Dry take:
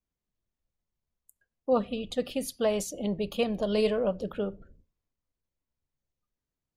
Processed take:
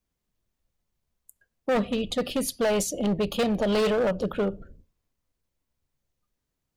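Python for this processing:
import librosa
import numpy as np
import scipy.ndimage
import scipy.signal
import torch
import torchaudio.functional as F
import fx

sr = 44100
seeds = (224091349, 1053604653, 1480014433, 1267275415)

y = np.clip(10.0 ** (27.5 / 20.0) * x, -1.0, 1.0) / 10.0 ** (27.5 / 20.0)
y = y * 10.0 ** (7.0 / 20.0)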